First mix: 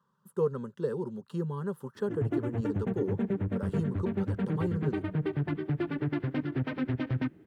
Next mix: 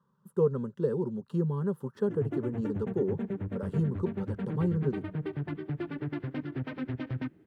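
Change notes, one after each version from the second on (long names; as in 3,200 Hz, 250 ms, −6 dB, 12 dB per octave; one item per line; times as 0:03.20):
speech: add tilt shelving filter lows +5 dB, about 780 Hz
background −4.0 dB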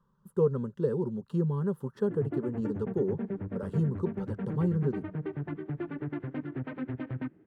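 background: add band-pass filter 140–2,100 Hz
master: remove high-pass filter 110 Hz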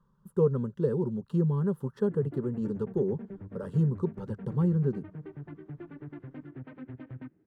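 background −9.5 dB
master: add low-shelf EQ 170 Hz +5 dB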